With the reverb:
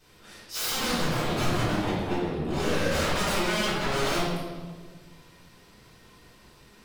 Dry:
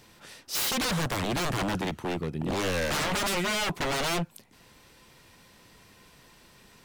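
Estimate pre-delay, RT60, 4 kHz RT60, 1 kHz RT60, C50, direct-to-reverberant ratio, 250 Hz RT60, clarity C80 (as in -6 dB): 3 ms, 1.5 s, 1.1 s, 1.3 s, -1.5 dB, -11.5 dB, 1.9 s, 1.5 dB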